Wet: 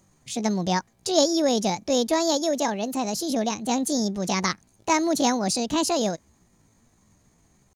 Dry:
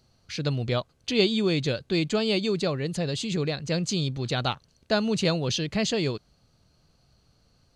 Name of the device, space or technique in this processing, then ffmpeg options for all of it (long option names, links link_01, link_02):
chipmunk voice: -filter_complex "[0:a]asplit=3[link_01][link_02][link_03];[link_01]afade=type=out:start_time=2.32:duration=0.02[link_04];[link_02]highpass=frequency=120:poles=1,afade=type=in:start_time=2.32:duration=0.02,afade=type=out:start_time=3.14:duration=0.02[link_05];[link_03]afade=type=in:start_time=3.14:duration=0.02[link_06];[link_04][link_05][link_06]amix=inputs=3:normalize=0,asetrate=66075,aresample=44100,atempo=0.66742,volume=2.5dB"